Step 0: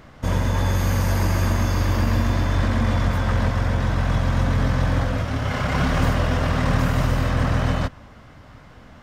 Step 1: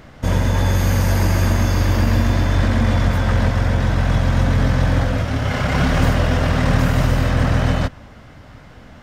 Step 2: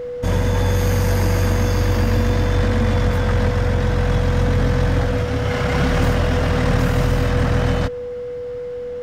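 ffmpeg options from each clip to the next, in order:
-af "equalizer=f=1.1k:w=3.5:g=-4,volume=4dB"
-af "acontrast=36,aeval=exprs='val(0)+0.112*sin(2*PI*490*n/s)':c=same,volume=-6dB"

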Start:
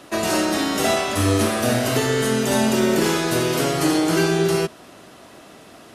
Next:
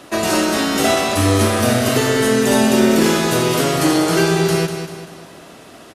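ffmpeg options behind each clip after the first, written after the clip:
-af "aecho=1:1:195|390|585|780|975:0.376|0.165|0.0728|0.032|0.0141,volume=3.5dB"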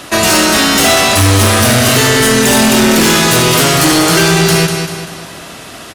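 -filter_complex "[0:a]equalizer=f=390:w=0.46:g=-8,asplit=2[a][b];[b]aeval=exprs='0.501*sin(PI/2*3.98*val(0)/0.501)':c=same,volume=-11dB[c];[a][c]amix=inputs=2:normalize=0,volume=5.5dB"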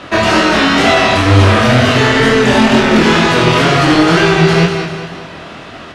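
-af "lowpass=3.1k,flanger=delay=20:depth=6.4:speed=2.1,volume=4dB"

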